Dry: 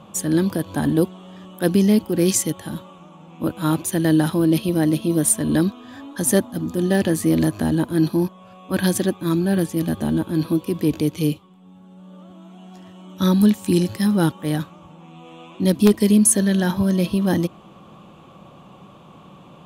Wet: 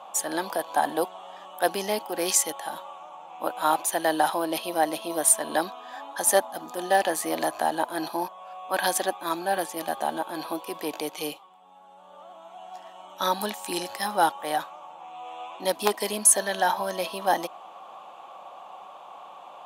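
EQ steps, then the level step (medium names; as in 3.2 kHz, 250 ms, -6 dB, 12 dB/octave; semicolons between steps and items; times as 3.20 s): resonant high-pass 760 Hz, resonance Q 3.7; -1.0 dB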